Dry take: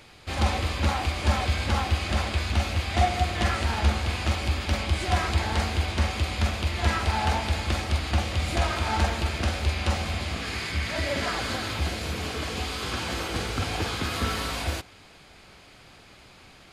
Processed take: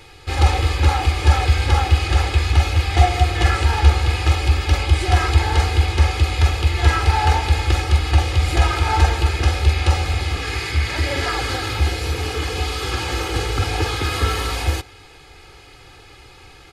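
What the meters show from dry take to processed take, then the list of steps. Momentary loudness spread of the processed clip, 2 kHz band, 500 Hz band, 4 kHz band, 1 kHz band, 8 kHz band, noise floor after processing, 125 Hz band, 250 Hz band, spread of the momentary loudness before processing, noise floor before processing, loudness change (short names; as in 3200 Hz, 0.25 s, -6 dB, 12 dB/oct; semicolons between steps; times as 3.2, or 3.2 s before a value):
6 LU, +6.0 dB, +5.5 dB, +5.5 dB, +7.0 dB, +5.5 dB, -45 dBFS, +10.0 dB, +2.5 dB, 5 LU, -51 dBFS, +8.0 dB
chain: low shelf 190 Hz +3.5 dB; comb 2.4 ms, depth 83%; gain +3.5 dB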